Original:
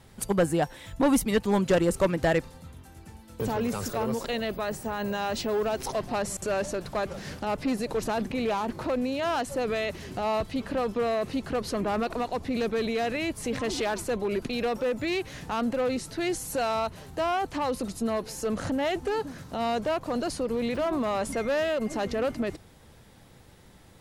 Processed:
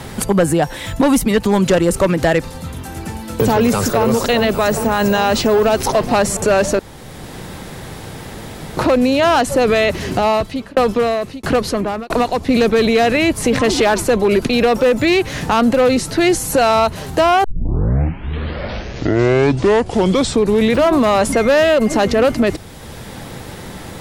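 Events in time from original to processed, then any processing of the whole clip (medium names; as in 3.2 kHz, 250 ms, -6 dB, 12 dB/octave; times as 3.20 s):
3.56–4.04 s: echo throw 400 ms, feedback 80%, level -10.5 dB
6.79–8.77 s: room tone
10.10–12.49 s: tremolo saw down 1.5 Hz, depth 100%
17.44 s: tape start 3.43 s
whole clip: loudness maximiser +21 dB; three bands compressed up and down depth 40%; trim -6 dB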